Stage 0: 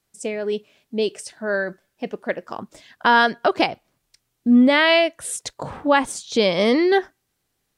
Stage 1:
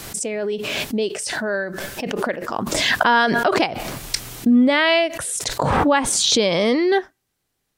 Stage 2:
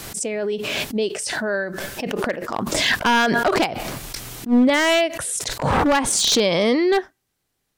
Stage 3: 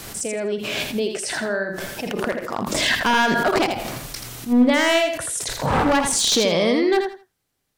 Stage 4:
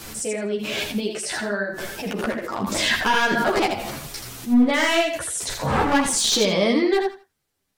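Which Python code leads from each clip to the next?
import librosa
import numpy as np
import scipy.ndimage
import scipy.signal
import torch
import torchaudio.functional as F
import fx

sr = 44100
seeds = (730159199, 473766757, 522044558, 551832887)

y1 = fx.pre_swell(x, sr, db_per_s=20.0)
y1 = y1 * librosa.db_to_amplitude(-1.0)
y2 = np.minimum(y1, 2.0 * 10.0 ** (-12.0 / 20.0) - y1)
y2 = fx.attack_slew(y2, sr, db_per_s=250.0)
y3 = fx.echo_feedback(y2, sr, ms=82, feedback_pct=22, wet_db=-6)
y3 = y3 * librosa.db_to_amplitude(-1.5)
y4 = fx.ensemble(y3, sr)
y4 = y4 * librosa.db_to_amplitude(2.0)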